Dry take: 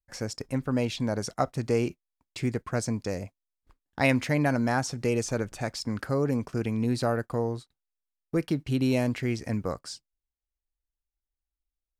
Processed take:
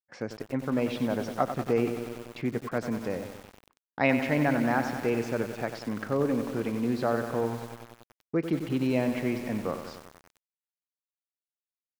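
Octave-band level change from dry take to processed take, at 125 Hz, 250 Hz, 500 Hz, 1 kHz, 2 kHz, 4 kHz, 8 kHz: -5.0, 0.0, +0.5, +1.0, 0.0, -5.0, -9.5 dB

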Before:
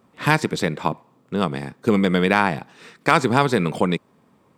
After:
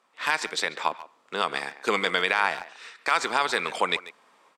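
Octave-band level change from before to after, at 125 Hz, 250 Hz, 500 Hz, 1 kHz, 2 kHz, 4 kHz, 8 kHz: -25.0, -18.5, -8.5, -4.0, -1.5, +1.5, -0.5 dB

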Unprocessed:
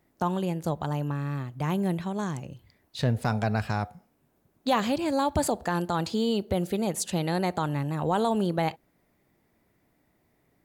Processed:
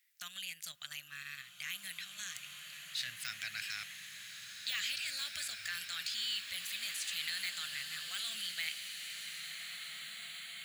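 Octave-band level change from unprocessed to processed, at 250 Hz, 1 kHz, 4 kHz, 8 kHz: -39.0, -26.0, +3.0, -2.5 dB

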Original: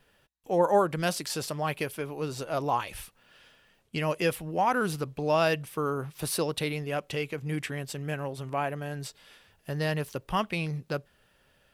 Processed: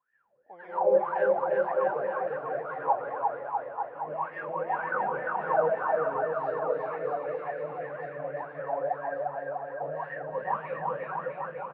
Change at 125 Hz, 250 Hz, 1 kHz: -15.0, -11.5, +2.5 dB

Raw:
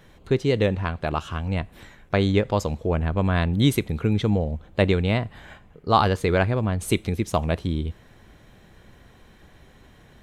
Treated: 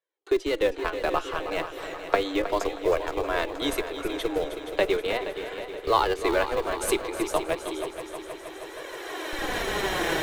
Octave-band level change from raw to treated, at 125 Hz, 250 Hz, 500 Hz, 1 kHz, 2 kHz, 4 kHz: -21.5, -7.0, 0.0, -0.5, +1.0, +0.5 dB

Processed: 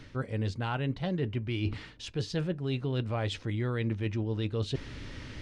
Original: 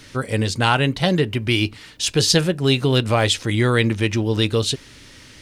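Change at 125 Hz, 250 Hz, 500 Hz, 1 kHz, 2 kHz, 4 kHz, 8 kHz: -10.0, -12.5, -14.0, -16.0, -17.5, -20.0, -26.0 dB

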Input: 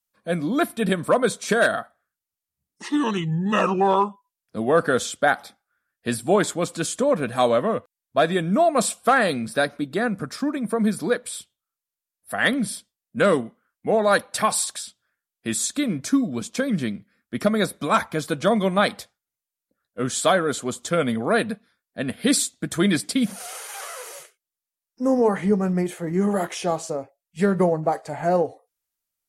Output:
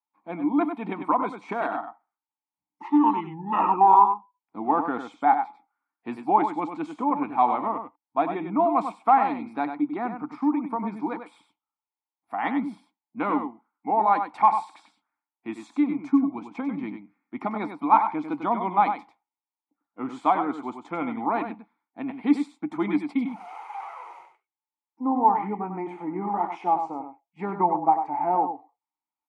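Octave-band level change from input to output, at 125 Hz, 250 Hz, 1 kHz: -13.5, -3.0, +4.5 dB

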